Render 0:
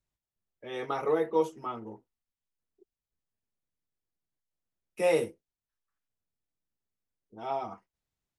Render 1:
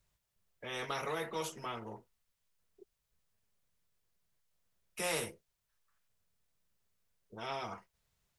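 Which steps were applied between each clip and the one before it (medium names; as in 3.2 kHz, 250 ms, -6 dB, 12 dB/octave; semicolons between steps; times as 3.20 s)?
peaking EQ 290 Hz -12 dB 0.48 oct; band-stop 790 Hz, Q 12; spectrum-flattening compressor 2:1; trim -5.5 dB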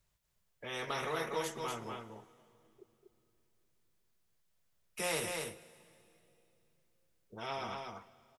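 delay 242 ms -4.5 dB; reverberation RT60 3.0 s, pre-delay 85 ms, DRR 19 dB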